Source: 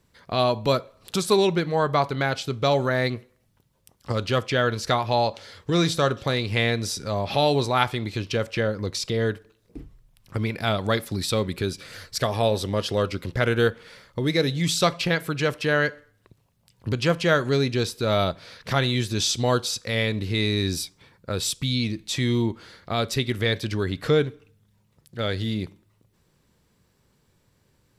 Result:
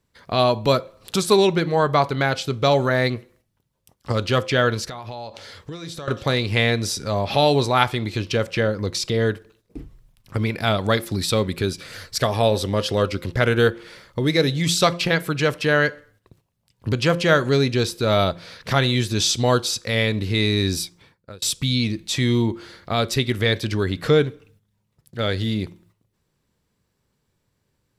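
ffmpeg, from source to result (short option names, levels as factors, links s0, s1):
-filter_complex "[0:a]asettb=1/sr,asplit=3[s0][s1][s2];[s0]atrim=end=4.844[s3];[s1]atrim=start=4.84:end=6.08,asetpts=PTS-STARTPTS,afade=t=in:d=0.004:c=qsin,afade=t=out:st=1.236:d=0.004:c=qsin,acompressor=threshold=0.02:ratio=8:attack=3.2:release=140:knee=1:detection=peak[s4];[s2]atrim=start=6.076[s5];[s3][s4]acrossfade=d=0.004:c1=hsin:c2=qsin[s6];[s6][s5]acrossfade=d=0.004:c1=qsin:c2=hsin,asplit=2[s7][s8];[s7]atrim=end=21.42,asetpts=PTS-STARTPTS,afade=t=out:st=20.66:d=0.76:c=qsin[s9];[s8]atrim=start=21.42,asetpts=PTS-STARTPTS,afade=t=in:d=0.004:c=hsin[s10];[s9][s10]concat=n=2:v=0:a=1,bandreject=f=173.7:t=h:w=4,bandreject=f=347.4:t=h:w=4,bandreject=f=521.1:t=h:w=4,agate=range=0.316:threshold=0.00126:ratio=16:detection=peak,volume=1.5"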